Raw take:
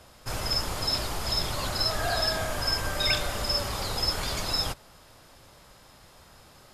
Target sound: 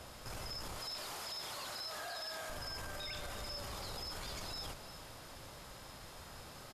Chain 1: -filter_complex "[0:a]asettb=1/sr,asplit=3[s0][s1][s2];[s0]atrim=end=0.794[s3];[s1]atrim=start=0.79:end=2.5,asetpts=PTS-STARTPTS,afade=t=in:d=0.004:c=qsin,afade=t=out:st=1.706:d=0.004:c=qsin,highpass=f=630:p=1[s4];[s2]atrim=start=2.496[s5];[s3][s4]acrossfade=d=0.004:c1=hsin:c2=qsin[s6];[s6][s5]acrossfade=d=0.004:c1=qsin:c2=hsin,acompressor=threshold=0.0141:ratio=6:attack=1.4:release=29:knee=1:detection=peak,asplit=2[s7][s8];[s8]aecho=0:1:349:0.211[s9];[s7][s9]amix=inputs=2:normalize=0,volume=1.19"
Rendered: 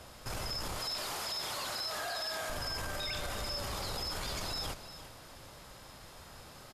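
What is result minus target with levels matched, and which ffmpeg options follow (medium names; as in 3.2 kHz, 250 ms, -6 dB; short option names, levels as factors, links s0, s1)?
compression: peak gain reduction -6 dB
-filter_complex "[0:a]asettb=1/sr,asplit=3[s0][s1][s2];[s0]atrim=end=0.794[s3];[s1]atrim=start=0.79:end=2.5,asetpts=PTS-STARTPTS,afade=t=in:d=0.004:c=qsin,afade=t=out:st=1.706:d=0.004:c=qsin,highpass=f=630:p=1[s4];[s2]atrim=start=2.496[s5];[s3][s4]acrossfade=d=0.004:c1=hsin:c2=qsin[s6];[s6][s5]acrossfade=d=0.004:c1=qsin:c2=hsin,acompressor=threshold=0.00596:ratio=6:attack=1.4:release=29:knee=1:detection=peak,asplit=2[s7][s8];[s8]aecho=0:1:349:0.211[s9];[s7][s9]amix=inputs=2:normalize=0,volume=1.19"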